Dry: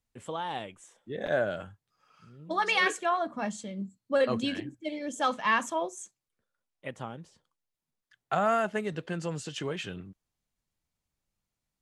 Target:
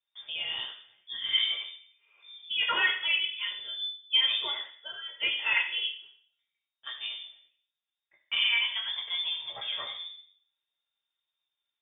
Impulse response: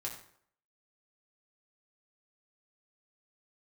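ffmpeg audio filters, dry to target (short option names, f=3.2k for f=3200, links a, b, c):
-filter_complex "[0:a]asettb=1/sr,asplit=3[a][b][c];[a]atrim=end=4.554[d];[b]atrim=start=4.55:end=5.23,asetpts=PTS-STARTPTS,afade=t=in:d=0.004:c=qsin,afade=t=out:st=0.676:d=0.004:c=qsin,highpass=650[e];[c]atrim=start=5.226[f];[d][e]acrossfade=d=0.004:c1=hsin:c2=qsin[g];[g][f]acrossfade=d=0.004:c1=qsin:c2=hsin[h];[1:a]atrim=start_sample=2205[i];[h][i]afir=irnorm=-1:irlink=0,lowpass=f=3.1k:t=q:w=0.5098,lowpass=f=3.1k:t=q:w=0.6013,lowpass=f=3.1k:t=q:w=0.9,lowpass=f=3.1k:t=q:w=2.563,afreqshift=-3700"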